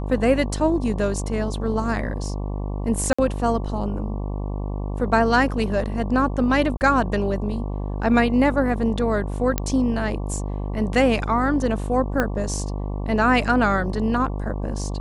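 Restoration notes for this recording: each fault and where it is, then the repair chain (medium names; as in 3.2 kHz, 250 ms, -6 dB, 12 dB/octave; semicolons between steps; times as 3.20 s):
buzz 50 Hz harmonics 23 -27 dBFS
3.13–3.19 s: dropout 55 ms
6.77–6.81 s: dropout 39 ms
9.58 s: pop -6 dBFS
12.20 s: pop -8 dBFS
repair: de-click; de-hum 50 Hz, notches 23; interpolate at 3.13 s, 55 ms; interpolate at 6.77 s, 39 ms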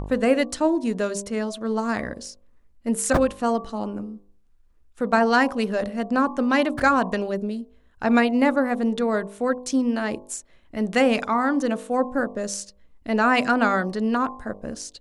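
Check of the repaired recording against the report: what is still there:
12.20 s: pop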